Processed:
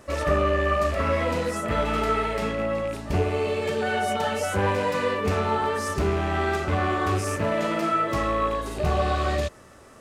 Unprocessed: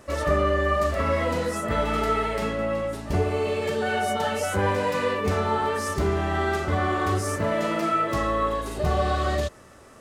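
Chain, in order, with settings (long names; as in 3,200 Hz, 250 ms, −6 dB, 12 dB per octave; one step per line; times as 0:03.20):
loose part that buzzes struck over −30 dBFS, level −29 dBFS
highs frequency-modulated by the lows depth 0.11 ms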